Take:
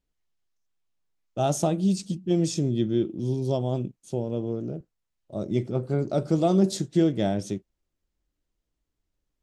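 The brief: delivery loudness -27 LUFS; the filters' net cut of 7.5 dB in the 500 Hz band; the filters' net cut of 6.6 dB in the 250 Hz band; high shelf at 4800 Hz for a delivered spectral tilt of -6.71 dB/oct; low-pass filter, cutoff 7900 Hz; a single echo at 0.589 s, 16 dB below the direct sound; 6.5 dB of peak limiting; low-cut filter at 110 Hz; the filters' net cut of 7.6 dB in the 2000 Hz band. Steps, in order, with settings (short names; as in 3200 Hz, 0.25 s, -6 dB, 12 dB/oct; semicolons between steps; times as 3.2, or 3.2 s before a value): HPF 110 Hz; LPF 7900 Hz; bell 250 Hz -7 dB; bell 500 Hz -7.5 dB; bell 2000 Hz -9 dB; high shelf 4800 Hz -5.5 dB; limiter -22 dBFS; echo 0.589 s -16 dB; gain +6.5 dB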